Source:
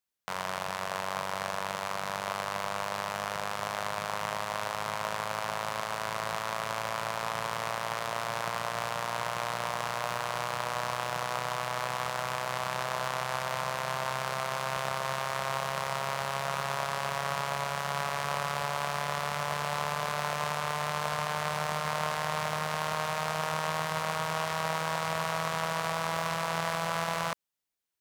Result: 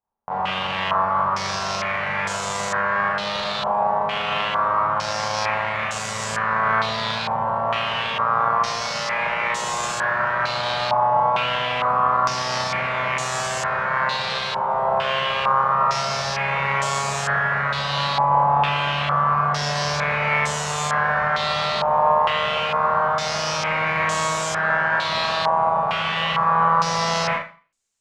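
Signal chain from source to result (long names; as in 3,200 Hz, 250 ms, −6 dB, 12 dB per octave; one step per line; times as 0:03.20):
low-shelf EQ 130 Hz +8.5 dB
four-comb reverb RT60 0.37 s, combs from 28 ms, DRR −6 dB
low-pass on a step sequencer 2.2 Hz 890–7,300 Hz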